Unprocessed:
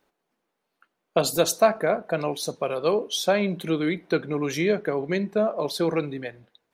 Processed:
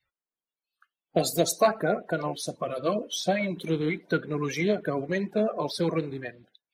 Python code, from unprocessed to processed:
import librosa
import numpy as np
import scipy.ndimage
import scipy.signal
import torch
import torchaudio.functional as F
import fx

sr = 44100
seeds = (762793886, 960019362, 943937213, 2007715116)

y = fx.spec_quant(x, sr, step_db=30)
y = fx.notch_comb(y, sr, f0_hz=410.0, at=(2.23, 3.57))
y = fx.noise_reduce_blind(y, sr, reduce_db=22)
y = y * librosa.db_to_amplitude(-2.0)